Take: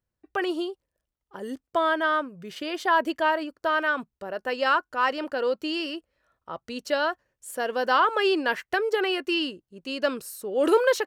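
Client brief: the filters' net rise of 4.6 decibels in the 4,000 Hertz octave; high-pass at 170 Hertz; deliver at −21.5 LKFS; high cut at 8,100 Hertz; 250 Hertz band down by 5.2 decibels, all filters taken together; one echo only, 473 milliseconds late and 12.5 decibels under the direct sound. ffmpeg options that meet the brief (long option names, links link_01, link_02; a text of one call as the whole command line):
ffmpeg -i in.wav -af "highpass=170,lowpass=8100,equalizer=frequency=250:width_type=o:gain=-7.5,equalizer=frequency=4000:width_type=o:gain=7,aecho=1:1:473:0.237,volume=4.5dB" out.wav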